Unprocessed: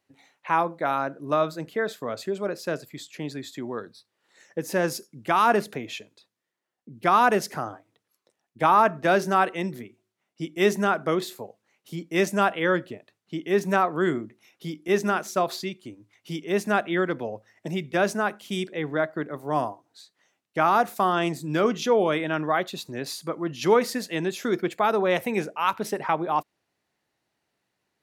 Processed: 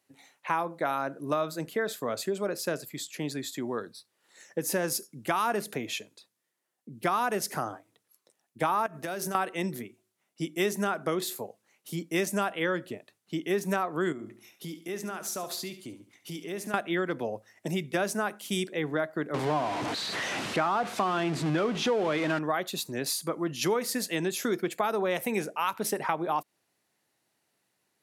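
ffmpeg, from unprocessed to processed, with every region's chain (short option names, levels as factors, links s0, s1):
-filter_complex "[0:a]asettb=1/sr,asplit=3[s0][s1][s2];[s0]atrim=end=8.864[s3];[s1]atrim=start=8.86:end=9.35,asetpts=PTS-STARTPTS,afade=t=in:d=0.004:c=qsin,afade=t=out:st=0.486:d=0.004:c=qsin,highshelf=f=7700:g=9,acompressor=threshold=0.0316:ratio=12:attack=3.2:release=140:knee=1:detection=peak[s4];[s2]atrim=start=9.346[s5];[s3][s4]acrossfade=d=0.004:c1=hsin:c2=qsin[s6];[s6][s5]acrossfade=d=0.004:c1=qsin:c2=hsin,asettb=1/sr,asplit=3[s7][s8][s9];[s7]atrim=end=14.124[s10];[s8]atrim=start=14.12:end=16.74,asetpts=PTS-STARTPTS,afade=t=in:d=0.004:c=qsin,afade=t=out:st=2.616:d=0.004:c=qsin,acompressor=threshold=0.0158:ratio=3:attack=3.2:release=140:knee=1:detection=peak,aecho=1:1:71|142|213|284:0.251|0.0929|0.0344|0.0127,atrim=end_sample=115542[s11];[s9]atrim=start=16.736[s12];[s10][s11]acrossfade=d=0.004:c1=hsin:c2=qsin[s13];[s13][s12]acrossfade=d=0.004:c1=qsin:c2=hsin,asettb=1/sr,asplit=3[s14][s15][s16];[s14]atrim=end=19.344[s17];[s15]atrim=start=19.34:end=22.39,asetpts=PTS-STARTPTS,afade=t=in:d=0.004:c=qsin,afade=t=out:st=3.046:d=0.004:c=qsin,aeval=exprs='val(0)+0.5*0.0562*sgn(val(0))':c=same,lowpass=3500[s18];[s16]atrim=start=22.386[s19];[s17][s18]acrossfade=d=0.004:c1=hsin:c2=qsin[s20];[s20][s19]acrossfade=d=0.004:c1=qsin:c2=hsin,equalizer=f=11000:t=o:w=1.3:g=10,acompressor=threshold=0.0562:ratio=4,highpass=100"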